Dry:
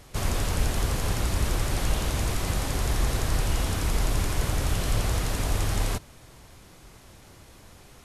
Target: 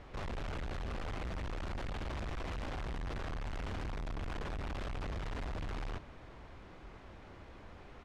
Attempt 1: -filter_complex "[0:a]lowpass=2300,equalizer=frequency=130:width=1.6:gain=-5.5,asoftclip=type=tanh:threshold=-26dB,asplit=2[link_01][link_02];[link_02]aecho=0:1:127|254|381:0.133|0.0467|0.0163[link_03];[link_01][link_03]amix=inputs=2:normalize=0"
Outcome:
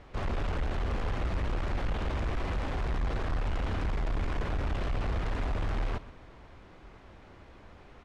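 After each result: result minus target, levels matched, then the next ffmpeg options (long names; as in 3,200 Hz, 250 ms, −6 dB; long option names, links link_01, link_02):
echo-to-direct +8.5 dB; soft clipping: distortion −6 dB
-filter_complex "[0:a]lowpass=2300,equalizer=frequency=130:width=1.6:gain=-5.5,asoftclip=type=tanh:threshold=-26dB,asplit=2[link_01][link_02];[link_02]aecho=0:1:127|254:0.0501|0.0175[link_03];[link_01][link_03]amix=inputs=2:normalize=0"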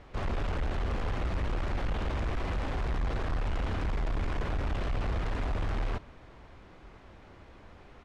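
soft clipping: distortion −6 dB
-filter_complex "[0:a]lowpass=2300,equalizer=frequency=130:width=1.6:gain=-5.5,asoftclip=type=tanh:threshold=-37.5dB,asplit=2[link_01][link_02];[link_02]aecho=0:1:127|254:0.0501|0.0175[link_03];[link_01][link_03]amix=inputs=2:normalize=0"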